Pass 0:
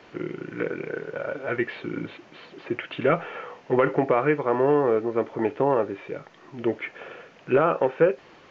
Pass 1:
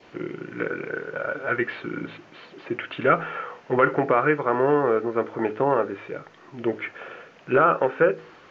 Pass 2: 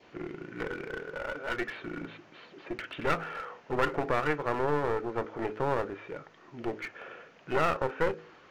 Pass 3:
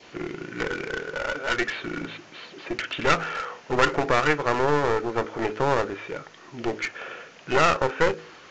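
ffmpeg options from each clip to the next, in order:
ffmpeg -i in.wav -af "bandreject=frequency=53.59:width_type=h:width=4,bandreject=frequency=107.18:width_type=h:width=4,bandreject=frequency=160.77:width_type=h:width=4,bandreject=frequency=214.36:width_type=h:width=4,bandreject=frequency=267.95:width_type=h:width=4,bandreject=frequency=321.54:width_type=h:width=4,bandreject=frequency=375.13:width_type=h:width=4,bandreject=frequency=428.72:width_type=h:width=4,bandreject=frequency=482.31:width_type=h:width=4,adynamicequalizer=threshold=0.00708:dfrequency=1400:dqfactor=2.4:tfrequency=1400:tqfactor=2.4:attack=5:release=100:ratio=0.375:range=4:mode=boostabove:tftype=bell" out.wav
ffmpeg -i in.wav -af "aeval=exprs='clip(val(0),-1,0.0355)':channel_layout=same,volume=-6dB" out.wav
ffmpeg -i in.wav -af "aresample=16000,aresample=44100,crystalizer=i=3.5:c=0,volume=6dB" out.wav

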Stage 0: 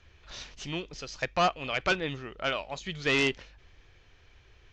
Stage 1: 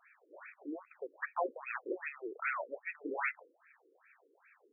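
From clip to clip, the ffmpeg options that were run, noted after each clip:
ffmpeg -i in.wav -af "highshelf=frequency=6600:gain=9.5,aeval=exprs='0.168*(cos(1*acos(clip(val(0)/0.168,-1,1)))-cos(1*PI/2))+0.0841*(cos(3*acos(clip(val(0)/0.168,-1,1)))-cos(3*PI/2))':channel_layout=same,afftfilt=real='re*between(b*sr/1024,360*pow(1900/360,0.5+0.5*sin(2*PI*2.5*pts/sr))/1.41,360*pow(1900/360,0.5+0.5*sin(2*PI*2.5*pts/sr))*1.41)':imag='im*between(b*sr/1024,360*pow(1900/360,0.5+0.5*sin(2*PI*2.5*pts/sr))/1.41,360*pow(1900/360,0.5+0.5*sin(2*PI*2.5*pts/sr))*1.41)':win_size=1024:overlap=0.75,volume=9.5dB" out.wav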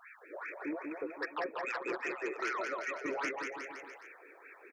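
ffmpeg -i in.wav -filter_complex "[0:a]acompressor=threshold=-48dB:ratio=2,aeval=exprs='0.0251*sin(PI/2*2*val(0)/0.0251)':channel_layout=same,asplit=2[link_01][link_02];[link_02]aecho=0:1:190|361|514.9|653.4|778.1:0.631|0.398|0.251|0.158|0.1[link_03];[link_01][link_03]amix=inputs=2:normalize=0" out.wav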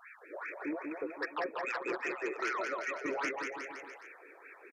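ffmpeg -i in.wav -af "aresample=32000,aresample=44100,volume=1dB" out.wav

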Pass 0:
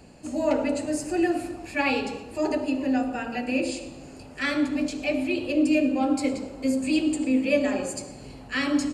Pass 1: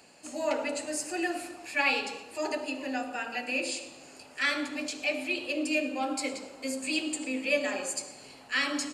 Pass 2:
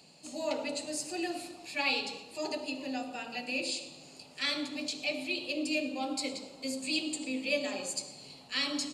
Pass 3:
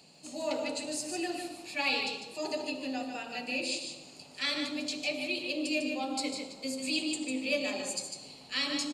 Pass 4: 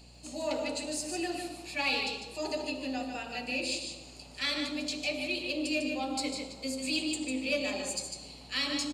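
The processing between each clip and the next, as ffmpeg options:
ffmpeg -i in.wav -af "highpass=frequency=1300:poles=1,volume=2dB" out.wav
ffmpeg -i in.wav -af "equalizer=frequency=160:width_type=o:width=0.67:gain=11,equalizer=frequency=1600:width_type=o:width=0.67:gain=-9,equalizer=frequency=4000:width_type=o:width=0.67:gain=9,volume=-4dB" out.wav
ffmpeg -i in.wav -af "asoftclip=type=hard:threshold=-20dB,aecho=1:1:150:0.473" out.wav
ffmpeg -i in.wav -filter_complex "[0:a]asplit=2[link_01][link_02];[link_02]asoftclip=type=tanh:threshold=-27.5dB,volume=-6.5dB[link_03];[link_01][link_03]amix=inputs=2:normalize=0,aeval=exprs='val(0)+0.00251*(sin(2*PI*60*n/s)+sin(2*PI*2*60*n/s)/2+sin(2*PI*3*60*n/s)/3+sin(2*PI*4*60*n/s)/4+sin(2*PI*5*60*n/s)/5)':channel_layout=same,volume=-2.5dB" out.wav

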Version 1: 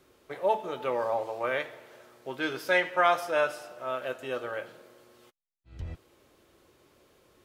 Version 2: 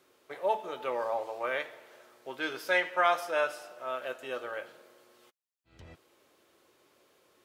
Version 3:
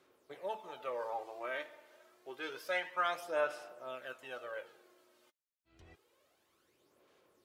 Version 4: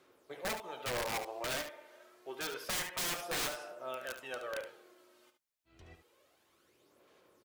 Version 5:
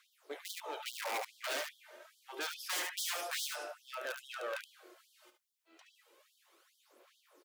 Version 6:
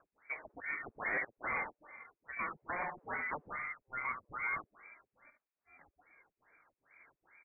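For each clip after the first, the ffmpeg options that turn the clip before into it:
ffmpeg -i in.wav -af "highpass=frequency=400:poles=1,volume=-1.5dB" out.wav
ffmpeg -i in.wav -af "aphaser=in_gain=1:out_gain=1:delay=3.3:decay=0.51:speed=0.28:type=sinusoidal,volume=-8.5dB" out.wav
ffmpeg -i in.wav -af "aeval=exprs='(mod(47.3*val(0)+1,2)-1)/47.3':channel_layout=same,aecho=1:1:72:0.335,volume=3dB" out.wav
ffmpeg -i in.wav -af "asoftclip=type=hard:threshold=-37.5dB,afftfilt=real='re*gte(b*sr/1024,250*pow(3100/250,0.5+0.5*sin(2*PI*2.4*pts/sr)))':imag='im*gte(b*sr/1024,250*pow(3100/250,0.5+0.5*sin(2*PI*2.4*pts/sr)))':win_size=1024:overlap=0.75,volume=3.5dB" out.wav
ffmpeg -i in.wav -af "lowpass=frequency=2300:width_type=q:width=0.5098,lowpass=frequency=2300:width_type=q:width=0.6013,lowpass=frequency=2300:width_type=q:width=0.9,lowpass=frequency=2300:width_type=q:width=2.563,afreqshift=-2700,volume=3dB" out.wav

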